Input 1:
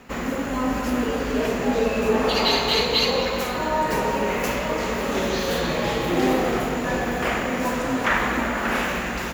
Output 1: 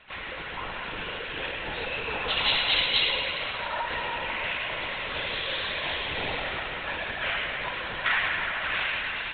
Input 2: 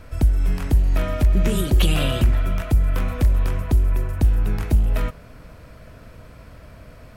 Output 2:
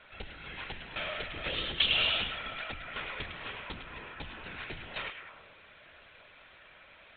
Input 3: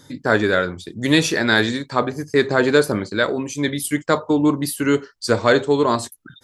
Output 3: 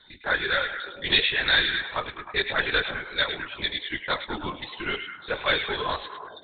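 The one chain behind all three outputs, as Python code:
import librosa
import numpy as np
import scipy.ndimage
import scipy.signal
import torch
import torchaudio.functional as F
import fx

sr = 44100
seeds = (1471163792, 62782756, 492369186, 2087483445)

y = np.diff(x, prepend=0.0)
y = fx.lpc_vocoder(y, sr, seeds[0], excitation='whisper', order=16)
y = fx.notch(y, sr, hz=1200.0, q=18.0)
y = fx.echo_stepped(y, sr, ms=104, hz=2600.0, octaves=-0.7, feedback_pct=70, wet_db=-5)
y = F.gain(torch.from_numpy(y), 9.0).numpy()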